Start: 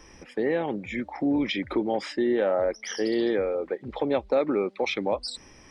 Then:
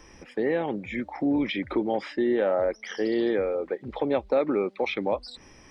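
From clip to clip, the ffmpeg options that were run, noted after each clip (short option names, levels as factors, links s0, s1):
-filter_complex "[0:a]acrossover=split=3900[s0][s1];[s1]acompressor=threshold=0.00158:ratio=4:attack=1:release=60[s2];[s0][s2]amix=inputs=2:normalize=0"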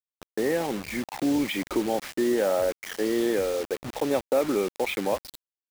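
-af "acrusher=bits=5:mix=0:aa=0.000001"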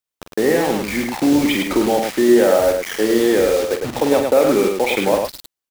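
-af "aecho=1:1:46.65|105:0.398|0.562,volume=2.66"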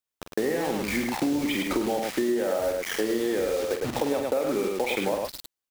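-af "acompressor=threshold=0.1:ratio=6,volume=0.708"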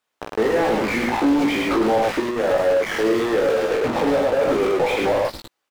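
-filter_complex "[0:a]asplit=2[s0][s1];[s1]highpass=f=720:p=1,volume=25.1,asoftclip=type=tanh:threshold=0.251[s2];[s0][s2]amix=inputs=2:normalize=0,lowpass=f=1100:p=1,volume=0.501,asplit=2[s3][s4];[s4]adelay=18,volume=0.596[s5];[s3][s5]amix=inputs=2:normalize=0"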